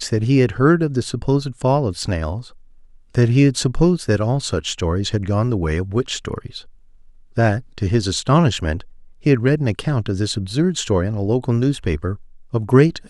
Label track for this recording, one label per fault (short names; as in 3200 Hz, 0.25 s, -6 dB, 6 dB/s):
2.030000	2.030000	gap 3.3 ms